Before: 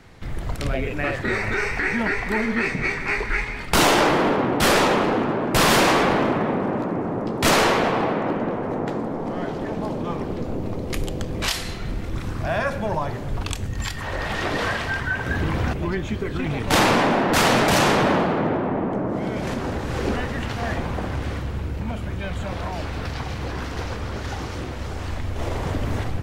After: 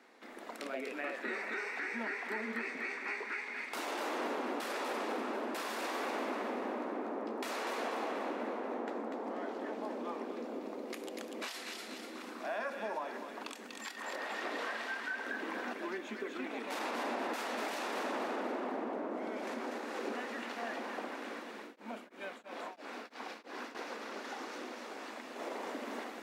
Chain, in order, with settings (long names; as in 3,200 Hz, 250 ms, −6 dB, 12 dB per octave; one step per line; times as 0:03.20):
elliptic high-pass filter 230 Hz, stop band 40 dB
spectral tilt +2 dB per octave
brickwall limiter −13 dBFS, peak gain reduction 9.5 dB
delay with a high-pass on its return 243 ms, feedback 43%, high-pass 1,700 Hz, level −4 dB
downward compressor 2.5 to 1, threshold −27 dBFS, peak gain reduction 6.5 dB
high-shelf EQ 3,000 Hz −11.5 dB
notch filter 3,100 Hz, Q 24
0:21.60–0:23.75: tremolo along a rectified sine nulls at 3 Hz
level −7.5 dB